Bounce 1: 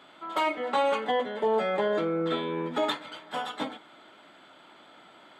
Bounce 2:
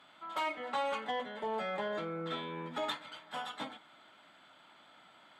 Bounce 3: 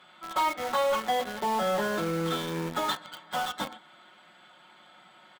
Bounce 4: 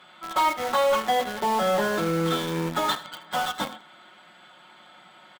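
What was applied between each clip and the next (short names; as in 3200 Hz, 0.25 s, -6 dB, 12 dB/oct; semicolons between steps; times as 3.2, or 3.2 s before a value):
bell 380 Hz -8.5 dB 1.2 oct; added harmonics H 5 -27 dB, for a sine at -17 dBFS; gain -7 dB
dynamic EQ 2400 Hz, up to -8 dB, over -59 dBFS, Q 2.6; comb 5.5 ms, depth 63%; in parallel at -11 dB: companded quantiser 2-bit; on the sum: gain +3.5 dB
echo 79 ms -16 dB; gain +4 dB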